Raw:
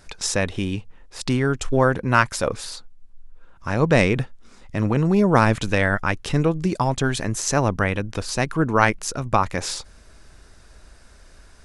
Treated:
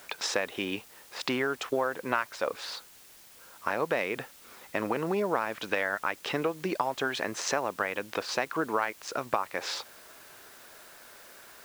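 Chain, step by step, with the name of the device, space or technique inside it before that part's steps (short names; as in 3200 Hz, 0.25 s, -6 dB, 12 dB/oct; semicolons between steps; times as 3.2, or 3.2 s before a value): baby monitor (BPF 460–3400 Hz; compressor, threshold -29 dBFS, peak gain reduction 17 dB; white noise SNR 21 dB); gain +3.5 dB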